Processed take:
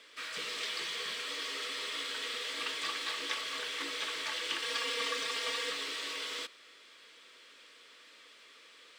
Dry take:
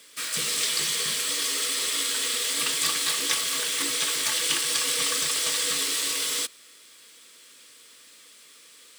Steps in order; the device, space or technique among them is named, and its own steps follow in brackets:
phone line with mismatched companding (band-pass filter 330–3,300 Hz; mu-law and A-law mismatch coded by mu)
0:04.62–0:05.70: comb filter 4.3 ms, depth 75%
level −7 dB

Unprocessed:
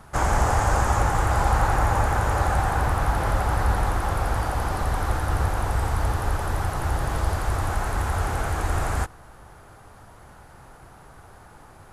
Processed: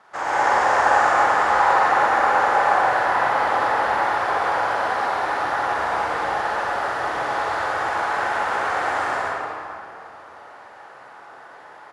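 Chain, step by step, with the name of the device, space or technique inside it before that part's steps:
station announcement (band-pass filter 490–4,600 Hz; parametric band 1,800 Hz +4 dB 0.29 octaves; loudspeakers that aren't time-aligned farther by 16 metres −2 dB, 38 metres −1 dB; convolution reverb RT60 2.6 s, pre-delay 120 ms, DRR −5.5 dB)
level −3 dB

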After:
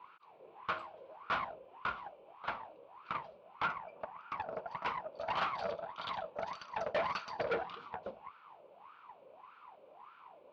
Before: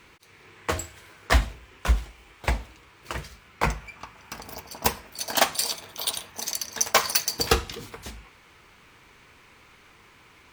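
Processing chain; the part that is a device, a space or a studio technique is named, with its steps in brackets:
flat-topped bell 1,700 Hz −15 dB 1 octave
wah-wah guitar rig (LFO wah 1.7 Hz 530–1,400 Hz, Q 9.2; tube saturation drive 48 dB, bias 0.6; loudspeaker in its box 88–4,200 Hz, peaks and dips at 180 Hz +6 dB, 610 Hz +3 dB, 1,400 Hz +8 dB, 2,300 Hz +6 dB)
level +15.5 dB

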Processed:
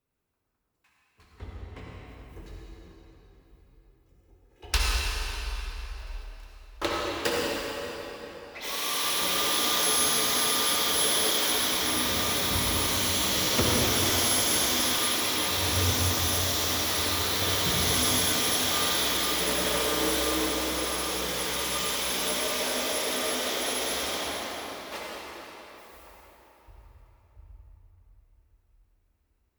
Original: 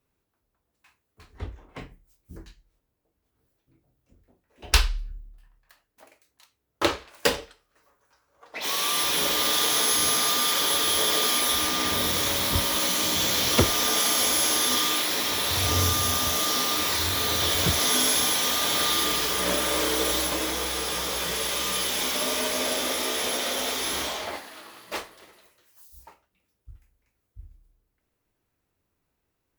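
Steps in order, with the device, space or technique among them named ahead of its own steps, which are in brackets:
0:02.36–0:04.71: comb filter 2.4 ms, depth 98%
cathedral (convolution reverb RT60 4.2 s, pre-delay 55 ms, DRR −4.5 dB)
level −7 dB

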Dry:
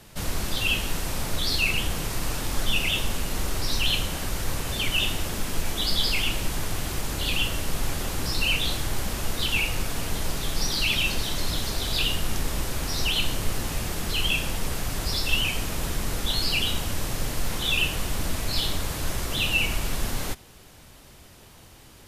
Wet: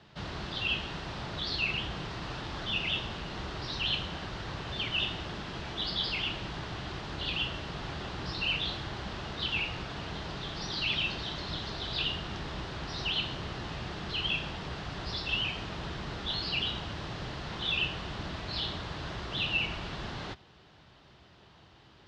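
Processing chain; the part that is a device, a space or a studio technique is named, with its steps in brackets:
guitar cabinet (loudspeaker in its box 76–4,200 Hz, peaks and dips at 95 Hz −4 dB, 250 Hz −6 dB, 510 Hz −5 dB, 2,300 Hz −5 dB)
level −4 dB

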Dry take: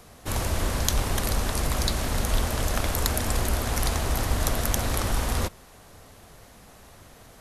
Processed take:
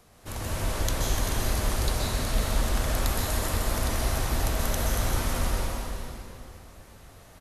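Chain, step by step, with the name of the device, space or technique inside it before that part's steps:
cave (single-tap delay 391 ms −11 dB; convolution reverb RT60 2.6 s, pre-delay 120 ms, DRR −5 dB)
level −8 dB

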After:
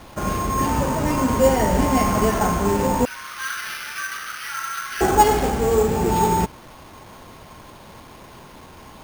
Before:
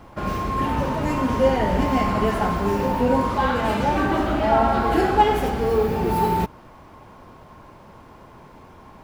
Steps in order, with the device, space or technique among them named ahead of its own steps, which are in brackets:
0:03.05–0:05.01: Butterworth high-pass 1,300 Hz 48 dB per octave
early 8-bit sampler (sample-rate reduction 7,600 Hz, jitter 0%; bit reduction 8 bits)
level +2 dB

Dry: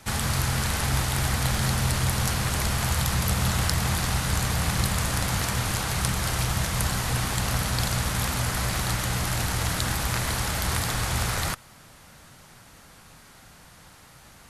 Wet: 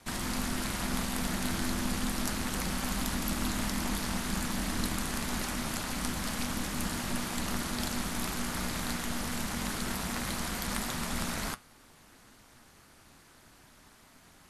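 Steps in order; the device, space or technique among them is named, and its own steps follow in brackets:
alien voice (ring modulation 120 Hz; flanger 0.35 Hz, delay 7.5 ms, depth 1.4 ms, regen −71%)

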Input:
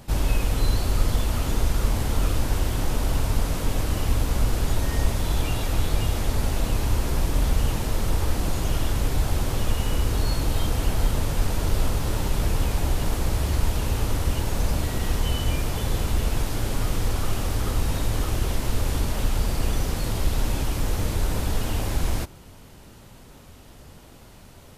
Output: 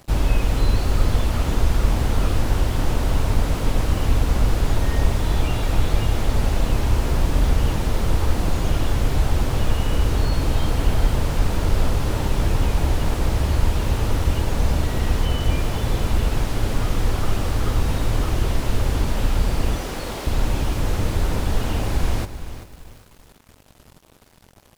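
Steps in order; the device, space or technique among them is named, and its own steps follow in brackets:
early transistor amplifier (dead-zone distortion −45.5 dBFS; slew-rate limiting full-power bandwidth 53 Hz)
0:19.76–0:20.27: high-pass filter 280 Hz 12 dB per octave
feedback echo at a low word length 386 ms, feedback 35%, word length 8 bits, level −12 dB
level +4 dB

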